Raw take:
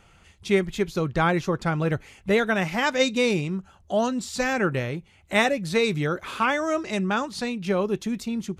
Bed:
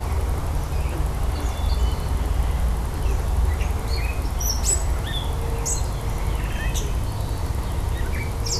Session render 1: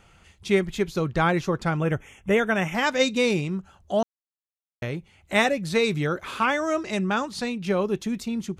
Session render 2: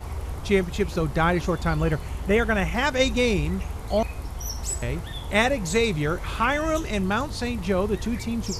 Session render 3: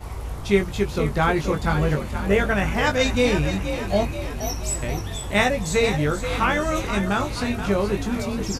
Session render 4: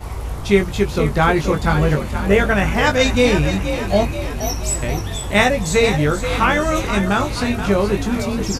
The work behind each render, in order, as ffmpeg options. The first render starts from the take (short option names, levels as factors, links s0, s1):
-filter_complex "[0:a]asettb=1/sr,asplit=3[s0][s1][s2];[s0]atrim=end=1.774[s3];[s1]atrim=start=1.77:end=2.75,asetpts=PTS-STARTPTS,afade=t=in:d=0.004:c=qsin,afade=t=out:st=0.976:d=0.004:c=qsin,asuperstop=centerf=4400:order=12:qfactor=2.4[s4];[s2]atrim=start=2.746[s5];[s3][s4]acrossfade=d=0.004:c1=hsin:c2=qsin[s6];[s6][s5]acrossfade=d=0.004:c1=qsin:c2=hsin,asplit=3[s7][s8][s9];[s7]atrim=end=4.03,asetpts=PTS-STARTPTS,afade=t=out:st=4.026:d=0.004:c=hsin[s10];[s8]atrim=start=4.03:end=4.82,asetpts=PTS-STARTPTS,volume=0[s11];[s9]atrim=start=4.82,asetpts=PTS-STARTPTS,afade=t=in:d=0.004:c=hsin[s12];[s10][s11][s12]concat=n=3:v=0:a=1"
-filter_complex "[1:a]volume=0.376[s0];[0:a][s0]amix=inputs=2:normalize=0"
-filter_complex "[0:a]asplit=2[s0][s1];[s1]adelay=20,volume=0.562[s2];[s0][s2]amix=inputs=2:normalize=0,asplit=8[s3][s4][s5][s6][s7][s8][s9][s10];[s4]adelay=478,afreqshift=43,volume=0.335[s11];[s5]adelay=956,afreqshift=86,volume=0.188[s12];[s6]adelay=1434,afreqshift=129,volume=0.105[s13];[s7]adelay=1912,afreqshift=172,volume=0.0589[s14];[s8]adelay=2390,afreqshift=215,volume=0.0331[s15];[s9]adelay=2868,afreqshift=258,volume=0.0184[s16];[s10]adelay=3346,afreqshift=301,volume=0.0104[s17];[s3][s11][s12][s13][s14][s15][s16][s17]amix=inputs=8:normalize=0"
-af "volume=1.78,alimiter=limit=0.891:level=0:latency=1"